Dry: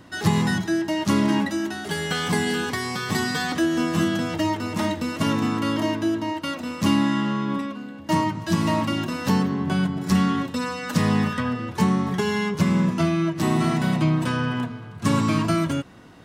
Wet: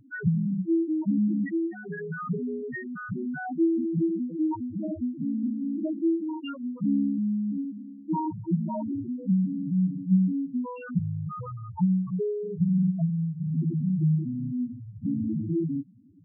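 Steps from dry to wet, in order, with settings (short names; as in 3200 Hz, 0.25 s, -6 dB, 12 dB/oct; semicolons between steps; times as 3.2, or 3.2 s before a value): 10.99–13.55 elliptic band-stop 190–410 Hz, stop band 50 dB; loudest bins only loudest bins 2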